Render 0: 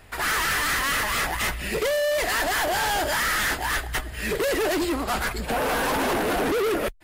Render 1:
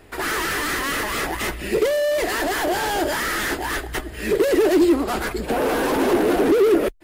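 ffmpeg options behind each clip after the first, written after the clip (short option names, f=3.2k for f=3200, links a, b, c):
-af "equalizer=f=350:w=1.3:g=12,volume=-1dB"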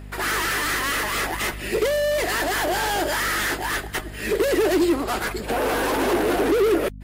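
-af "aeval=exprs='val(0)+0.0316*(sin(2*PI*50*n/s)+sin(2*PI*2*50*n/s)/2+sin(2*PI*3*50*n/s)/3+sin(2*PI*4*50*n/s)/4+sin(2*PI*5*50*n/s)/5)':c=same,lowshelf=f=410:g=-8,volume=1dB"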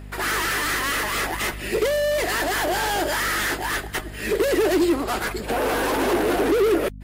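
-af "asoftclip=type=hard:threshold=-13dB"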